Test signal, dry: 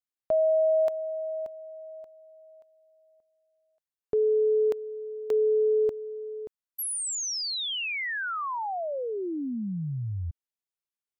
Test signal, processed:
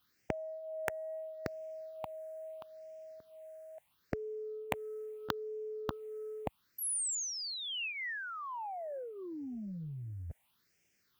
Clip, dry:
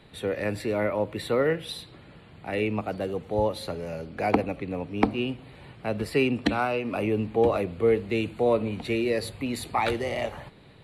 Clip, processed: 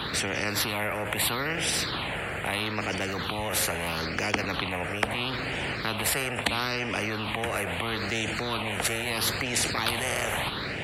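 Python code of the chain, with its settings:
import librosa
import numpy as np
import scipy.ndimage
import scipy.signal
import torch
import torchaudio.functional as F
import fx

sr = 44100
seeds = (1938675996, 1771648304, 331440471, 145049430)

p1 = fx.over_compress(x, sr, threshold_db=-37.0, ratio=-1.0)
p2 = x + (p1 * librosa.db_to_amplitude(-2.0))
p3 = fx.phaser_stages(p2, sr, stages=6, low_hz=260.0, high_hz=1100.0, hz=0.76, feedback_pct=30)
p4 = scipy.signal.sosfilt(scipy.signal.butter(2, 73.0, 'highpass', fs=sr, output='sos'), p3)
p5 = fx.high_shelf(p4, sr, hz=3900.0, db=-6.5)
p6 = fx.spectral_comp(p5, sr, ratio=4.0)
y = p6 * librosa.db_to_amplitude(4.0)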